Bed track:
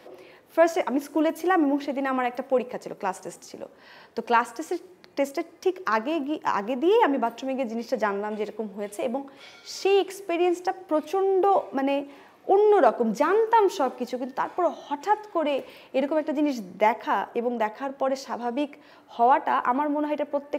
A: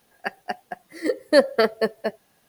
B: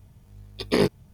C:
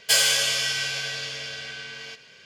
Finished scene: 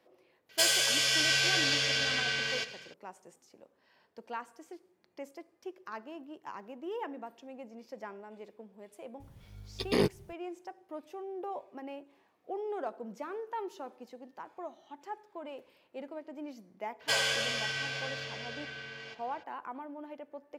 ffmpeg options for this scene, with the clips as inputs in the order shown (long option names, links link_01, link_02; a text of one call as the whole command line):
ffmpeg -i bed.wav -i cue0.wav -i cue1.wav -i cue2.wav -filter_complex "[3:a]asplit=2[link_01][link_02];[0:a]volume=-18.5dB[link_03];[link_01]dynaudnorm=framelen=310:gausssize=3:maxgain=13.5dB[link_04];[2:a]alimiter=limit=-13.5dB:level=0:latency=1:release=71[link_05];[link_02]lowpass=frequency=1500:poles=1[link_06];[link_04]atrim=end=2.45,asetpts=PTS-STARTPTS,volume=-7.5dB,afade=type=in:duration=0.004:curve=hsin,afade=type=out:start_time=2.446:duration=0.004:curve=hsin,adelay=490[link_07];[link_05]atrim=end=1.13,asetpts=PTS-STARTPTS,volume=-3dB,afade=type=in:duration=0.004:curve=hsin,afade=type=out:start_time=1.126:duration=0.004:curve=hsin,adelay=9200[link_08];[link_06]atrim=end=2.45,asetpts=PTS-STARTPTS,volume=-2dB,afade=type=in:duration=0.02,afade=type=out:start_time=2.43:duration=0.02,adelay=16990[link_09];[link_03][link_07][link_08][link_09]amix=inputs=4:normalize=0" out.wav